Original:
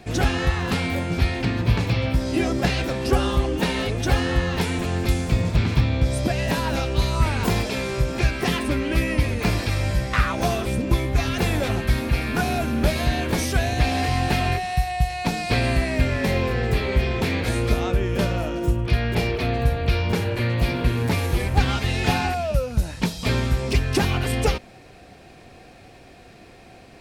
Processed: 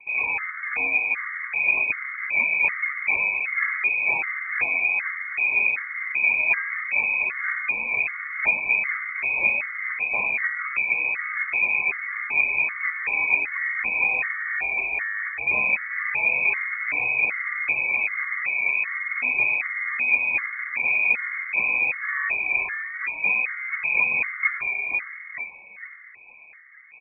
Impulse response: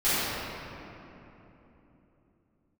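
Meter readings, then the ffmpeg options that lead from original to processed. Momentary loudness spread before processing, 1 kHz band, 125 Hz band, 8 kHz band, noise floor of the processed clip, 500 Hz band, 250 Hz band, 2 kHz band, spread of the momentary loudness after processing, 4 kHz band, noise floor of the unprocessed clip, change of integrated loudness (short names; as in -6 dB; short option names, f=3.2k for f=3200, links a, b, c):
3 LU, -8.0 dB, under -30 dB, under -40 dB, -44 dBFS, -17.0 dB, under -20 dB, +9.0 dB, 6 LU, under -40 dB, -47 dBFS, +1.0 dB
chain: -filter_complex "[0:a]asplit=2[a][b];[b]acrusher=samples=31:mix=1:aa=0.000001:lfo=1:lforange=49.6:lforate=2.1,volume=-3dB[c];[a][c]amix=inputs=2:normalize=0,adynamicsmooth=sensitivity=2:basefreq=1.4k,asplit=6[d][e][f][g][h][i];[e]adelay=458,afreqshift=100,volume=-4.5dB[j];[f]adelay=916,afreqshift=200,volume=-11.6dB[k];[g]adelay=1374,afreqshift=300,volume=-18.8dB[l];[h]adelay=1832,afreqshift=400,volume=-25.9dB[m];[i]adelay=2290,afreqshift=500,volume=-33dB[n];[d][j][k][l][m][n]amix=inputs=6:normalize=0,acrossover=split=110[o][p];[o]aeval=exprs='0.1*(abs(mod(val(0)/0.1+3,4)-2)-1)':c=same[q];[q][p]amix=inputs=2:normalize=0,lowpass=f=2.2k:t=q:w=0.5098,lowpass=f=2.2k:t=q:w=0.6013,lowpass=f=2.2k:t=q:w=0.9,lowpass=f=2.2k:t=q:w=2.563,afreqshift=-2600,afftfilt=real='re*gt(sin(2*PI*1.3*pts/sr)*(1-2*mod(floor(b*sr/1024/1100),2)),0)':imag='im*gt(sin(2*PI*1.3*pts/sr)*(1-2*mod(floor(b*sr/1024/1100),2)),0)':win_size=1024:overlap=0.75,volume=-4dB"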